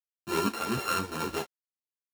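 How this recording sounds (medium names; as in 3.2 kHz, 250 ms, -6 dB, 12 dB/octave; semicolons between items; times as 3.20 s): a buzz of ramps at a fixed pitch in blocks of 32 samples; tremolo saw up 1.9 Hz, depth 50%; a quantiser's noise floor 8-bit, dither none; a shimmering, thickened sound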